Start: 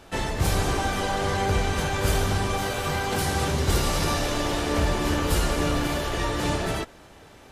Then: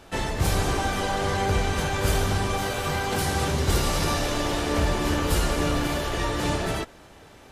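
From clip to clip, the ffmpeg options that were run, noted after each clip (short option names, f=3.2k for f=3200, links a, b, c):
-af anull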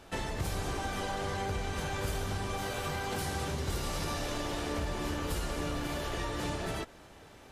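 -af "acompressor=threshold=-28dB:ratio=3,volume=-4.5dB"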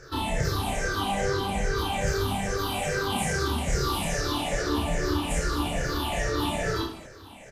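-filter_complex "[0:a]afftfilt=real='re*pow(10,23/40*sin(2*PI*(0.55*log(max(b,1)*sr/1024/100)/log(2)-(-2.4)*(pts-256)/sr)))':imag='im*pow(10,23/40*sin(2*PI*(0.55*log(max(b,1)*sr/1024/100)/log(2)-(-2.4)*(pts-256)/sr)))':win_size=1024:overlap=0.75,asplit=2[a][b];[b]aecho=0:1:30|66|109.2|161|223.2:0.631|0.398|0.251|0.158|0.1[c];[a][c]amix=inputs=2:normalize=0"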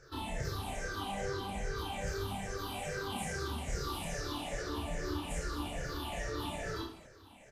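-af "flanger=delay=1.3:depth=2.9:regen=-72:speed=1.7:shape=triangular,volume=-6.5dB"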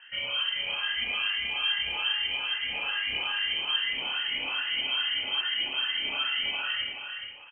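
-af "aecho=1:1:425:0.473,lowpass=f=2.7k:t=q:w=0.5098,lowpass=f=2.7k:t=q:w=0.6013,lowpass=f=2.7k:t=q:w=0.9,lowpass=f=2.7k:t=q:w=2.563,afreqshift=-3200,volume=7dB"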